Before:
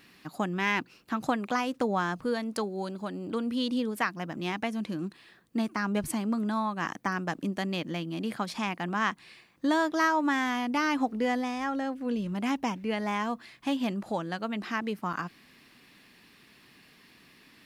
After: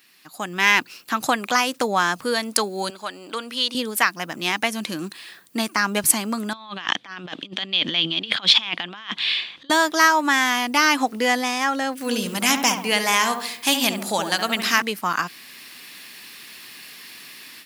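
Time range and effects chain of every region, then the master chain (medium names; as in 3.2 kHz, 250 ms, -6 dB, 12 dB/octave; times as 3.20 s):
2.90–3.75 s: high-pass 840 Hz 6 dB/octave + treble shelf 6.6 kHz -9.5 dB
6.53–9.70 s: compressor with a negative ratio -37 dBFS, ratio -0.5 + resonant low-pass 3.4 kHz, resonance Q 6
11.97–14.82 s: treble shelf 3.8 kHz +10.5 dB + filtered feedback delay 70 ms, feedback 55%, low-pass 1.3 kHz, level -5.5 dB
whole clip: level rider gain up to 15.5 dB; tilt EQ +3.5 dB/octave; trim -4 dB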